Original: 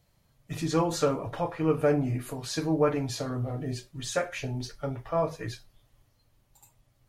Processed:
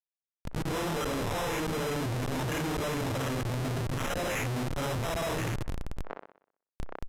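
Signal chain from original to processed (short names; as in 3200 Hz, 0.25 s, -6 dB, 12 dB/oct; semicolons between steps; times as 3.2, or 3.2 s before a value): phase scrambler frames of 0.2 s; low shelf 68 Hz +10.5 dB; notch 770 Hz, Q 14; de-hum 159.2 Hz, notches 8; in parallel at -2.5 dB: compressor 8:1, threshold -35 dBFS, peak gain reduction 17 dB; on the sum: auto swell 0.406 s; LFO low-pass sine 2.8 Hz 940–2800 Hz; sample-rate reducer 4500 Hz, jitter 0%; Schmitt trigger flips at -46 dBFS; on a send: band-limited delay 62 ms, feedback 45%, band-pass 890 Hz, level -21.5 dB; on the sum: downsampling 32000 Hz; sustainer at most 73 dB/s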